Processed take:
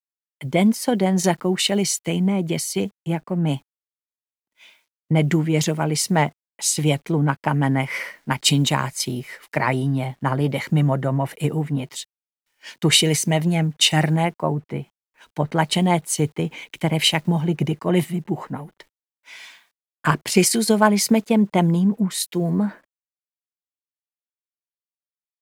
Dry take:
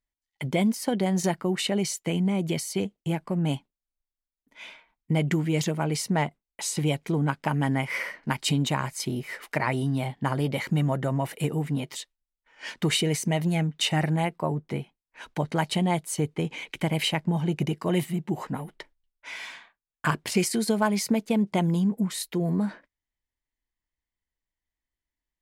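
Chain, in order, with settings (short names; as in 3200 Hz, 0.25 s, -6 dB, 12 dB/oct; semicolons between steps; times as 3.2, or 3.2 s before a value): bit-crush 10-bit; three-band expander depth 70%; gain +5.5 dB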